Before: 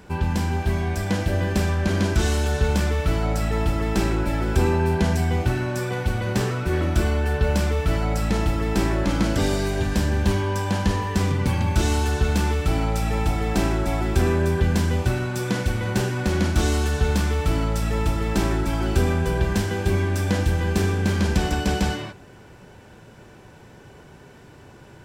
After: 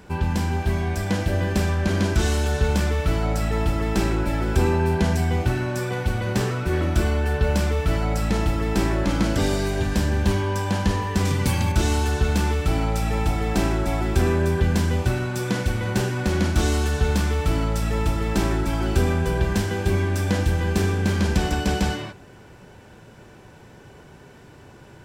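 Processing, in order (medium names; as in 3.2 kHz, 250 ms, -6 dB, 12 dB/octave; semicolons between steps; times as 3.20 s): 11.25–11.72 s: treble shelf 3.9 kHz +10.5 dB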